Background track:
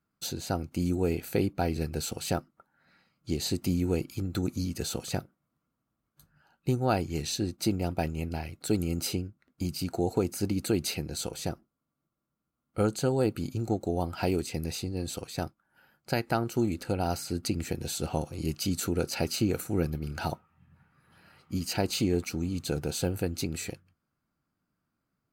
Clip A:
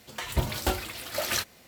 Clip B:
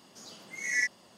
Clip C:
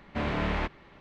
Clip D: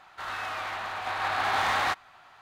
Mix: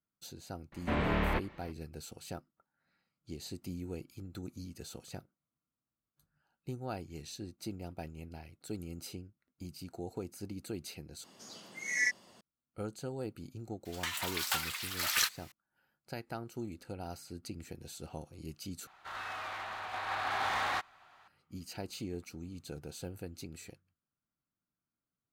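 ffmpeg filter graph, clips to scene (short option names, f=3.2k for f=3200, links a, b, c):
-filter_complex "[0:a]volume=-13.5dB[a];[3:a]acrossover=split=3900[b][c];[c]acompressor=threshold=-57dB:ratio=4:attack=1:release=60[d];[b][d]amix=inputs=2:normalize=0[e];[1:a]highpass=f=1k:w=0.5412,highpass=f=1k:w=1.3066[f];[a]asplit=3[g][h][i];[g]atrim=end=11.244[j];[2:a]atrim=end=1.17,asetpts=PTS-STARTPTS,volume=-2dB[k];[h]atrim=start=12.406:end=18.874[l];[4:a]atrim=end=2.41,asetpts=PTS-STARTPTS,volume=-7dB[m];[i]atrim=start=21.276[n];[e]atrim=end=1,asetpts=PTS-STARTPTS,volume=-1.5dB,afade=t=in:d=0.004:c=hsin,afade=t=out:st=0.996:d=0.004:c=hsin,adelay=720[o];[f]atrim=end=1.67,asetpts=PTS-STARTPTS,volume=-0.5dB,afade=t=in:d=0.004:c=hsin,afade=t=out:st=1.666:d=0.004:c=hsin,adelay=13850[p];[j][k]acrossfade=d=0.004:c1=hsin:c2=hsin[q];[q][l]acrossfade=d=0.004:c1=hsin:c2=hsin[r];[r][m]acrossfade=d=0.004:c1=hsin:c2=hsin[s];[s][n]acrossfade=d=0.004:c1=hsin:c2=hsin[t];[t][o][p]amix=inputs=3:normalize=0"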